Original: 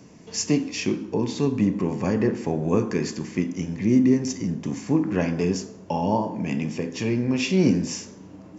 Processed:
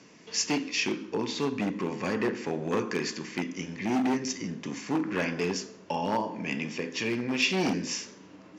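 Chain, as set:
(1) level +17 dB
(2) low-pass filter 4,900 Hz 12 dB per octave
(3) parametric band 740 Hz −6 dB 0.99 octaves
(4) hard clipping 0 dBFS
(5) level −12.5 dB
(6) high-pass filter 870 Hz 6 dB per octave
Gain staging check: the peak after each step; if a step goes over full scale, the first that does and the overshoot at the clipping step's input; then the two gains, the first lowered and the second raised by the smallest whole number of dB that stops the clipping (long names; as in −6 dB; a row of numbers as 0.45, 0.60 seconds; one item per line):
+10.5, +10.5, +10.0, 0.0, −12.5, −13.0 dBFS
step 1, 10.0 dB
step 1 +7 dB, step 5 −2.5 dB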